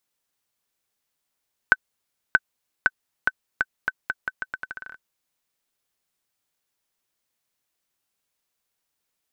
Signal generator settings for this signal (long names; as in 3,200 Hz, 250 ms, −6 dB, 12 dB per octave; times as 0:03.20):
bouncing ball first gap 0.63 s, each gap 0.81, 1,520 Hz, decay 40 ms −1.5 dBFS